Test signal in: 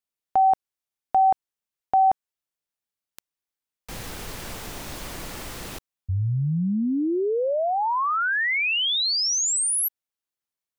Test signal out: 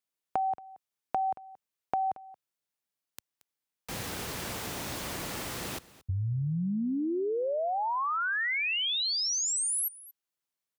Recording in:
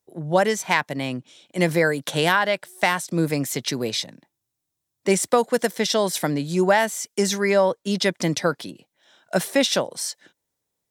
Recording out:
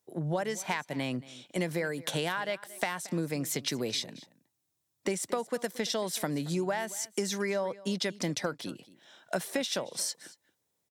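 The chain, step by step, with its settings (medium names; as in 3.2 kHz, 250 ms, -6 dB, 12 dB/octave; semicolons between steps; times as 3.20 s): high-pass 79 Hz; compression 6:1, threshold -29 dBFS; delay 227 ms -19.5 dB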